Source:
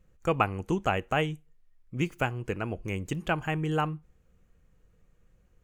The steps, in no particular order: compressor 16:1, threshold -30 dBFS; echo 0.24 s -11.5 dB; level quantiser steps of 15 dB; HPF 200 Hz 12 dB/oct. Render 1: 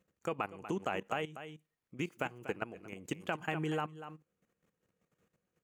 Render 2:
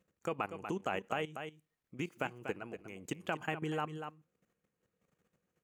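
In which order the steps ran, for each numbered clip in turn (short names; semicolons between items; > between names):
echo > level quantiser > HPF > compressor; level quantiser > echo > compressor > HPF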